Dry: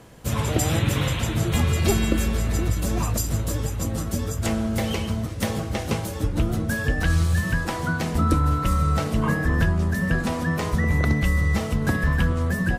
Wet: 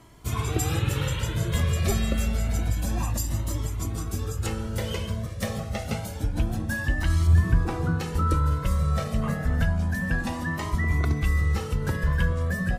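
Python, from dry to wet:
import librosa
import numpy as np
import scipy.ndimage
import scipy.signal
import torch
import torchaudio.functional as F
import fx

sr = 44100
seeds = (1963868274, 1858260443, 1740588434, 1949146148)

y = fx.tilt_shelf(x, sr, db=6.5, hz=1300.0, at=(7.27, 8.0))
y = fx.comb_cascade(y, sr, direction='rising', hz=0.28)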